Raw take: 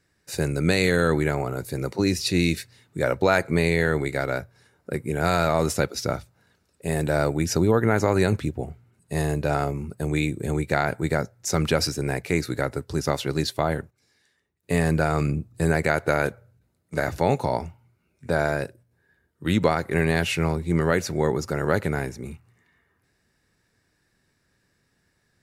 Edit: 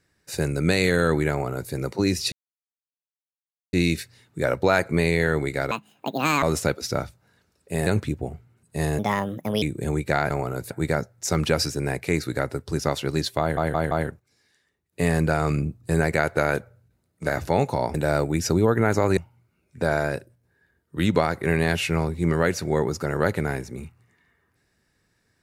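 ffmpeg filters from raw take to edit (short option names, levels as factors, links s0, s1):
-filter_complex "[0:a]asplit=14[s0][s1][s2][s3][s4][s5][s6][s7][s8][s9][s10][s11][s12][s13];[s0]atrim=end=2.32,asetpts=PTS-STARTPTS,afade=t=out:st=2.316:d=0.004:c=hsin,apad=pad_dur=1.41[s14];[s1]atrim=start=2.32:end=4.304,asetpts=PTS-STARTPTS,afade=t=in:d=0.004:c=hsin[s15];[s2]atrim=start=4.3:end=5.56,asetpts=PTS-STARTPTS,asetrate=77616,aresample=44100[s16];[s3]atrim=start=5.556:end=7.002[s17];[s4]atrim=start=8.228:end=9.354[s18];[s5]atrim=start=9.35:end=10.24,asetpts=PTS-STARTPTS,asetrate=61740,aresample=44100[s19];[s6]atrim=start=10.236:end=10.922[s20];[s7]atrim=start=1.308:end=1.712[s21];[s8]atrim=start=10.918:end=13.792[s22];[s9]atrim=start=13.618:end=13.792[s23];[s10]atrim=start=13.618:end=13.792[s24];[s11]atrim=start=13.618:end=17.652[s25];[s12]atrim=start=6.998:end=8.232[s26];[s13]atrim=start=17.648[s27];[s14][s15]concat=n=2:v=0:a=1[s28];[s28][s16]acrossfade=d=0.004:c1=hsin:c2=hsin[s29];[s29][s17]acrossfade=d=0.004:c1=hsin:c2=hsin[s30];[s30][s18]acrossfade=d=0.004:c1=hsin:c2=hsin[s31];[s31][s19]acrossfade=d=0.004:c1=hsin:c2=hsin[s32];[s32][s20]acrossfade=d=0.004:c1=hsin:c2=hsin[s33];[s33][s21]acrossfade=d=0.004:c1=hsin:c2=hsin[s34];[s34][s22]acrossfade=d=0.004:c1=hsin:c2=hsin[s35];[s35][s23]acrossfade=d=0.004:c1=hsin:c2=hsin[s36];[s36][s24]acrossfade=d=0.004:c1=hsin:c2=hsin[s37];[s37][s25]acrossfade=d=0.004:c1=hsin:c2=hsin[s38];[s38][s26]acrossfade=d=0.004:c1=hsin:c2=hsin[s39];[s39][s27]acrossfade=d=0.004:c1=hsin:c2=hsin"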